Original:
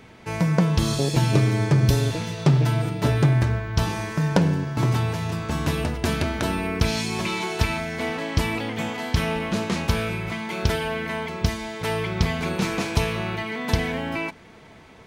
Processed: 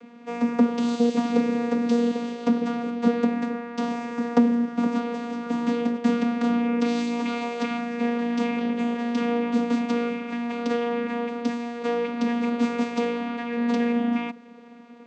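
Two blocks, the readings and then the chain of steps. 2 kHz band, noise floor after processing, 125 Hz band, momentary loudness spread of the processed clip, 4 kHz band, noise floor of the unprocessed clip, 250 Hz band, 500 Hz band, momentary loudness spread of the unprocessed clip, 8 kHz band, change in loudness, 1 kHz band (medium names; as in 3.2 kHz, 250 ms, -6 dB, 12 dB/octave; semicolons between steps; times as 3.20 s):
-6.0 dB, -45 dBFS, -21.0 dB, 7 LU, -8.5 dB, -47 dBFS, +4.5 dB, +1.0 dB, 8 LU, under -10 dB, -1.0 dB, -1.0 dB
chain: vocoder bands 16, saw 237 Hz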